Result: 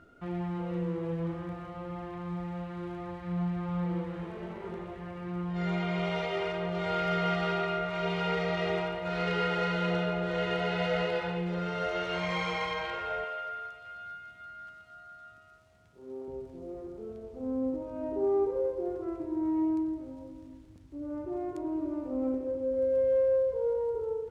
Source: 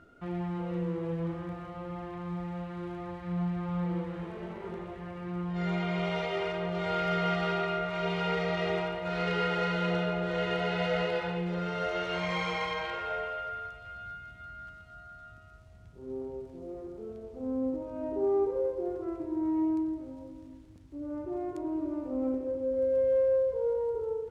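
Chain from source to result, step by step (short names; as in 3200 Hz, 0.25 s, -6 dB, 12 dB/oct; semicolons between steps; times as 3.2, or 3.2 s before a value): 13.24–16.28 HPF 400 Hz 6 dB/oct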